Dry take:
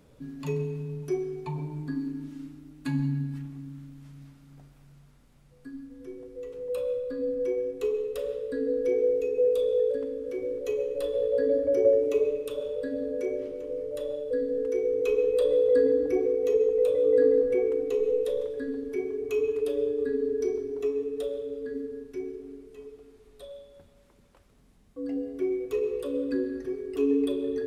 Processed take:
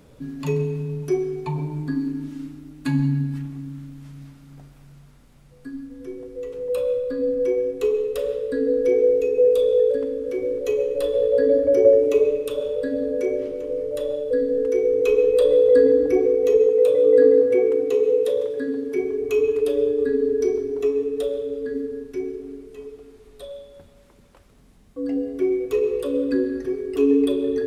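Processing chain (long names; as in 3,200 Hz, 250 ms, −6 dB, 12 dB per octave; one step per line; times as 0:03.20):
0:16.67–0:18.97: high-pass filter 110 Hz 12 dB per octave
level +7 dB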